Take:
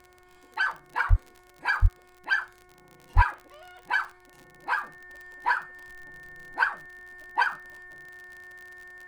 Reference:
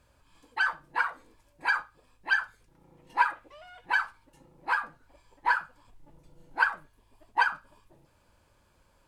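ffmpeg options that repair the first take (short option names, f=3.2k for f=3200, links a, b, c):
-filter_complex "[0:a]adeclick=t=4,bandreject=f=362.5:t=h:w=4,bandreject=f=725:t=h:w=4,bandreject=f=1.0875k:t=h:w=4,bandreject=f=1.45k:t=h:w=4,bandreject=f=1.8125k:t=h:w=4,bandreject=f=2.175k:t=h:w=4,bandreject=f=1.8k:w=30,asplit=3[a][b][c];[a]afade=t=out:st=1.09:d=0.02[d];[b]highpass=f=140:w=0.5412,highpass=f=140:w=1.3066,afade=t=in:st=1.09:d=0.02,afade=t=out:st=1.21:d=0.02[e];[c]afade=t=in:st=1.21:d=0.02[f];[d][e][f]amix=inputs=3:normalize=0,asplit=3[g][h][i];[g]afade=t=out:st=1.81:d=0.02[j];[h]highpass=f=140:w=0.5412,highpass=f=140:w=1.3066,afade=t=in:st=1.81:d=0.02,afade=t=out:st=1.93:d=0.02[k];[i]afade=t=in:st=1.93:d=0.02[l];[j][k][l]amix=inputs=3:normalize=0,asplit=3[m][n][o];[m]afade=t=out:st=3.15:d=0.02[p];[n]highpass=f=140:w=0.5412,highpass=f=140:w=1.3066,afade=t=in:st=3.15:d=0.02,afade=t=out:st=3.27:d=0.02[q];[o]afade=t=in:st=3.27:d=0.02[r];[p][q][r]amix=inputs=3:normalize=0"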